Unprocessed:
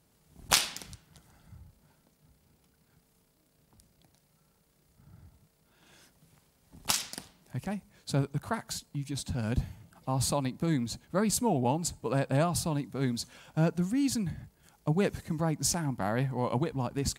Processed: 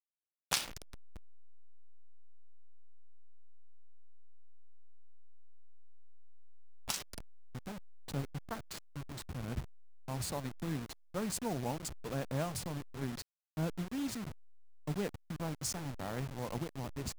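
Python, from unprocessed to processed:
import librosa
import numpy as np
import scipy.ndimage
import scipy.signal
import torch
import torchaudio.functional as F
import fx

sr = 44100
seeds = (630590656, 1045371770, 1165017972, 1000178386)

y = fx.delta_hold(x, sr, step_db=-30.0)
y = F.gain(torch.from_numpy(y), -8.5).numpy()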